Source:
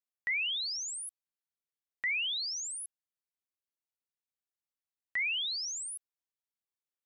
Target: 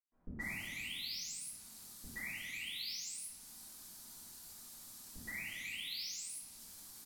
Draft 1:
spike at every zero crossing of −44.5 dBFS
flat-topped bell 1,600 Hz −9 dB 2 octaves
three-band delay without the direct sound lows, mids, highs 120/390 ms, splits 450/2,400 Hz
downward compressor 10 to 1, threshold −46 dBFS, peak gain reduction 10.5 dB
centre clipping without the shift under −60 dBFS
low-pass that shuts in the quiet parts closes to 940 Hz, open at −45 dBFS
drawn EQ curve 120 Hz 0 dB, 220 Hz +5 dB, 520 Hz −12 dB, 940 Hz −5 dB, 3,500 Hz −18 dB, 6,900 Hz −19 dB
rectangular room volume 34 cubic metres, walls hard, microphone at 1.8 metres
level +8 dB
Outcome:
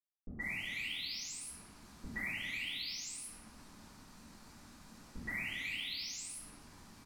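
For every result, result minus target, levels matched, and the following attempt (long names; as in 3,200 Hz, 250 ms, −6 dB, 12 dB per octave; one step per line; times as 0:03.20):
centre clipping without the shift: distortion +13 dB; spike at every zero crossing: distortion −9 dB
spike at every zero crossing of −44.5 dBFS
flat-topped bell 1,600 Hz −9 dB 2 octaves
three-band delay without the direct sound lows, mids, highs 120/390 ms, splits 450/2,400 Hz
downward compressor 10 to 1, threshold −46 dBFS, peak gain reduction 10.5 dB
centre clipping without the shift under −69 dBFS
low-pass that shuts in the quiet parts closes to 940 Hz, open at −45 dBFS
drawn EQ curve 120 Hz 0 dB, 220 Hz +5 dB, 520 Hz −12 dB, 940 Hz −5 dB, 3,500 Hz −18 dB, 6,900 Hz −19 dB
rectangular room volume 34 cubic metres, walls hard, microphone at 1.8 metres
level +8 dB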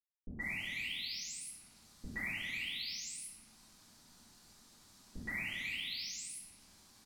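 spike at every zero crossing: distortion −9 dB
spike at every zero crossing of −34.5 dBFS
flat-topped bell 1,600 Hz −9 dB 2 octaves
three-band delay without the direct sound lows, mids, highs 120/390 ms, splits 450/2,400 Hz
downward compressor 10 to 1, threshold −46 dBFS, peak gain reduction 13 dB
centre clipping without the shift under −69 dBFS
low-pass that shuts in the quiet parts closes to 940 Hz, open at −45 dBFS
drawn EQ curve 120 Hz 0 dB, 220 Hz +5 dB, 520 Hz −12 dB, 940 Hz −5 dB, 3,500 Hz −18 dB, 6,900 Hz −19 dB
rectangular room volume 34 cubic metres, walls hard, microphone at 1.8 metres
level +8 dB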